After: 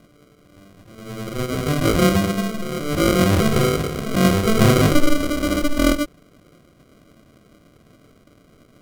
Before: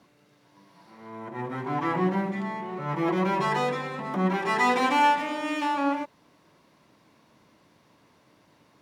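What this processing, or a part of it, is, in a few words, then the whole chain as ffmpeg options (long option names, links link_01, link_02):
crushed at another speed: -af "asetrate=55125,aresample=44100,acrusher=samples=40:mix=1:aa=0.000001,asetrate=35280,aresample=44100,volume=9dB"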